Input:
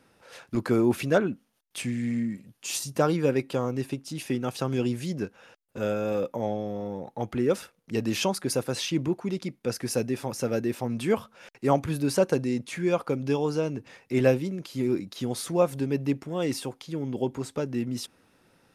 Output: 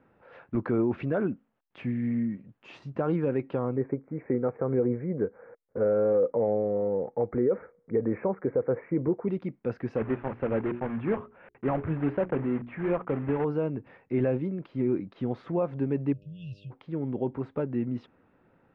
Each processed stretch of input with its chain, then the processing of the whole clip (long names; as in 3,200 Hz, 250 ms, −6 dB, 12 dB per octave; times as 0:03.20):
0:03.76–0:09.28: Chebyshev low-pass filter 2,300 Hz, order 8 + parametric band 470 Hz +13 dB 0.39 octaves
0:09.96–0:13.45: one scale factor per block 3 bits + low-pass filter 2,700 Hz 24 dB per octave + mains-hum notches 60/120/180/240/300/360/420 Hz
0:16.12–0:16.70: linear-phase brick-wall band-stop 170–2,500 Hz + hum with harmonics 100 Hz, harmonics 6, −58 dBFS −3 dB per octave
whole clip: Bessel low-pass filter 1,500 Hz, order 4; brickwall limiter −17.5 dBFS